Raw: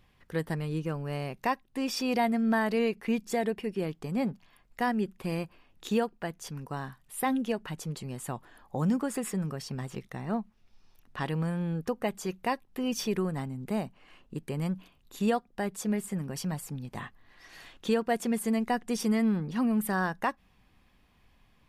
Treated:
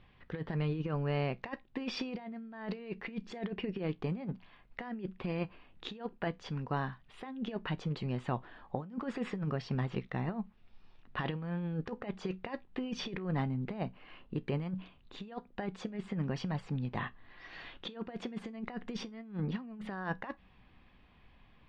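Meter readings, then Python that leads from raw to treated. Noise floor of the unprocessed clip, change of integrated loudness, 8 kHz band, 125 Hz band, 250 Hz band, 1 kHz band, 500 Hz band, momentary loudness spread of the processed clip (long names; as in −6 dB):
−65 dBFS, −7.0 dB, below −15 dB, −1.5 dB, −8.0 dB, −9.0 dB, −8.0 dB, 10 LU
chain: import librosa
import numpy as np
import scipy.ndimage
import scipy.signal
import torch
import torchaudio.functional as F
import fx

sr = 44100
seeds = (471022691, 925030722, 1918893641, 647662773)

y = scipy.signal.sosfilt(scipy.signal.butter(4, 3800.0, 'lowpass', fs=sr, output='sos'), x)
y = fx.over_compress(y, sr, threshold_db=-33.0, ratio=-0.5)
y = fx.comb_fb(y, sr, f0_hz=62.0, decay_s=0.18, harmonics='all', damping=0.0, mix_pct=40)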